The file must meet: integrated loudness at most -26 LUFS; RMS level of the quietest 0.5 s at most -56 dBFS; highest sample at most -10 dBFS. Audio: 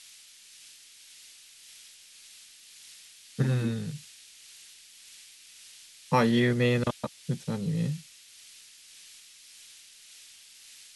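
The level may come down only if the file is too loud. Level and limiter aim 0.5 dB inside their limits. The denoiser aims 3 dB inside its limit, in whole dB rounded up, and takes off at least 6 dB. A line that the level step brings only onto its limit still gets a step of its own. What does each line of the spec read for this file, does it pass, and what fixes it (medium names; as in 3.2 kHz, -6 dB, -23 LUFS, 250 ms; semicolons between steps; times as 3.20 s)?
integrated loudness -28.5 LUFS: pass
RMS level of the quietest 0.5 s -53 dBFS: fail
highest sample -11.5 dBFS: pass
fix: noise reduction 6 dB, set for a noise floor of -53 dBFS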